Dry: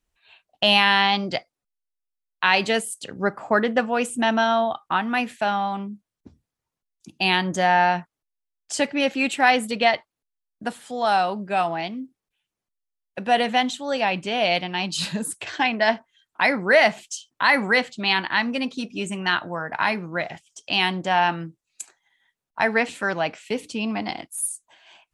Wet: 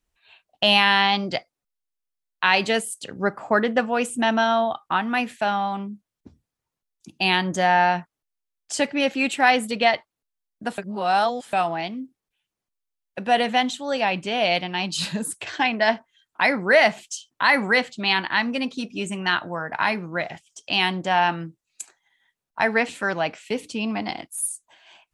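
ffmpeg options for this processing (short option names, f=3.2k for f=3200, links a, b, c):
-filter_complex "[0:a]asplit=3[a][b][c];[a]atrim=end=10.782[d];[b]atrim=start=10.778:end=11.532,asetpts=PTS-STARTPTS,areverse[e];[c]atrim=start=11.528[f];[d][e]acrossfade=d=0.004:c1=hsin:c2=hsin[g];[g][f]acrossfade=d=0.004:c1=hsin:c2=hsin"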